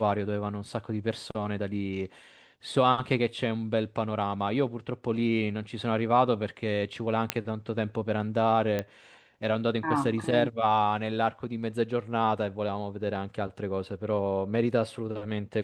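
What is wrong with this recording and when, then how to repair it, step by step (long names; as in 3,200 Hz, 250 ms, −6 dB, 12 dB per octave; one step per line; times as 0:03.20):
0:07.30: click −8 dBFS
0:08.79: click −16 dBFS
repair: click removal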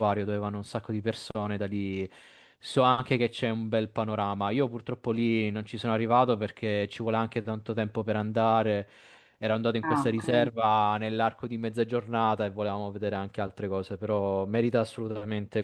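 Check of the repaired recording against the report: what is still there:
none of them is left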